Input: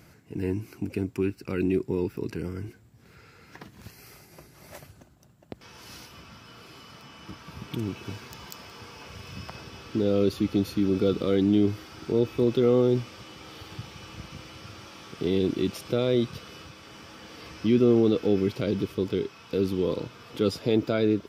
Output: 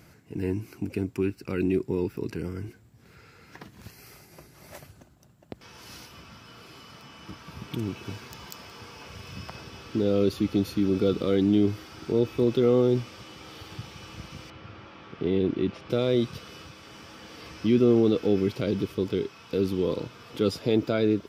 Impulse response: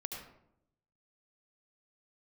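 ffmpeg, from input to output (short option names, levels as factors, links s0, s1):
-filter_complex "[0:a]asettb=1/sr,asplit=3[s0][s1][s2];[s0]atrim=end=14.504[s3];[s1]atrim=start=14.5:end=15.9,asetpts=PTS-STARTPTS,afade=t=in:d=0.004:c=qsin,afade=t=out:st=1.396:d=0.004:c=qsin,lowpass=2600[s4];[s2]atrim=start=15.896[s5];[s3][s4]acrossfade=d=0.004:c1=hsin:c2=qsin[s6];[s6][s5]acrossfade=d=0.004:c1=qsin:c2=hsin"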